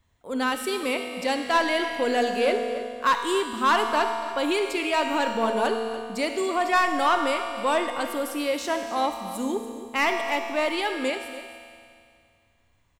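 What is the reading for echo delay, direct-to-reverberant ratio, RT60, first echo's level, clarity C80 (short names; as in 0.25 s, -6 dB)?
0.286 s, 3.5 dB, 2.3 s, -14.5 dB, 5.0 dB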